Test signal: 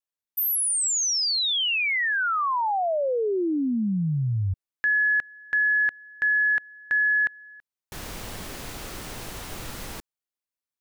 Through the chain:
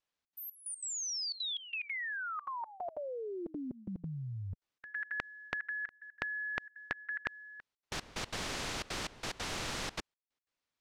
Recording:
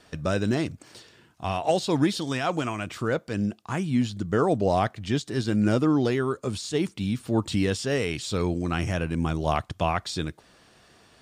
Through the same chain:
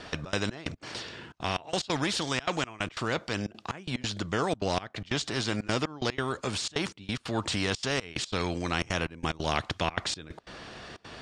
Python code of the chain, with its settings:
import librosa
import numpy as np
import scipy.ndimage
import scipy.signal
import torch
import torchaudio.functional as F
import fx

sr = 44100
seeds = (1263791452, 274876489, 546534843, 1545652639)

y = scipy.signal.sosfilt(scipy.signal.butter(2, 4900.0, 'lowpass', fs=sr, output='sos'), x)
y = fx.step_gate(y, sr, bpm=182, pattern='xxx.xx..x.xxx', floor_db=-24.0, edge_ms=4.5)
y = fx.spectral_comp(y, sr, ratio=2.0)